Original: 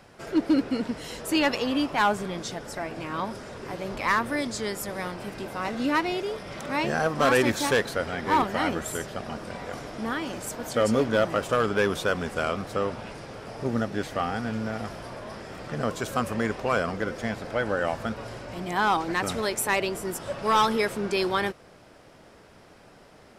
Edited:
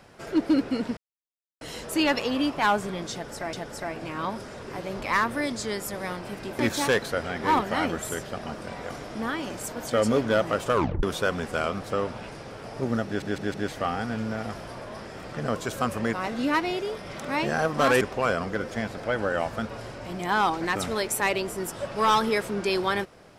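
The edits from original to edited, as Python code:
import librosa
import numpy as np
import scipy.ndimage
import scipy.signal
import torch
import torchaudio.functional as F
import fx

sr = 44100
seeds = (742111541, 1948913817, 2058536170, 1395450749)

y = fx.edit(x, sr, fx.insert_silence(at_s=0.97, length_s=0.64),
    fx.repeat(start_s=2.48, length_s=0.41, count=2),
    fx.move(start_s=5.54, length_s=1.88, to_s=16.48),
    fx.tape_stop(start_s=11.57, length_s=0.29),
    fx.stutter(start_s=13.89, slice_s=0.16, count=4), tone=tone)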